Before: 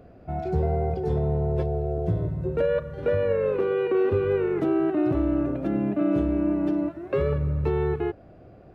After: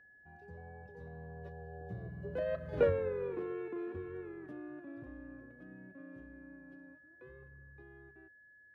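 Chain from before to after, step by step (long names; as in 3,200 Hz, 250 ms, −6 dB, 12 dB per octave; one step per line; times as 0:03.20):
source passing by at 0:02.82, 29 m/s, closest 2 metres
steady tone 1,700 Hz −63 dBFS
speech leveller within 4 dB 0.5 s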